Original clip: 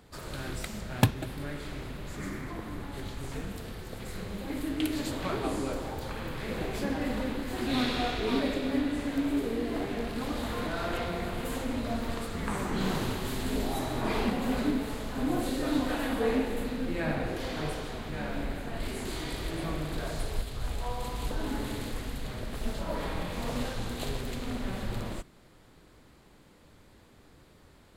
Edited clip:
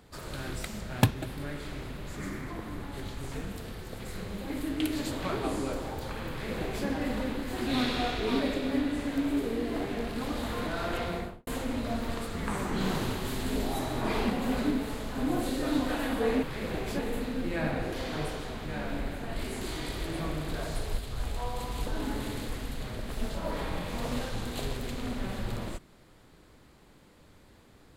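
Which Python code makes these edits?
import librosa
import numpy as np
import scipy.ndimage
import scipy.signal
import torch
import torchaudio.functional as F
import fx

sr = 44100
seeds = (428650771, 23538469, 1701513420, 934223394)

y = fx.studio_fade_out(x, sr, start_s=11.13, length_s=0.34)
y = fx.edit(y, sr, fx.duplicate(start_s=6.3, length_s=0.56, to_s=16.43), tone=tone)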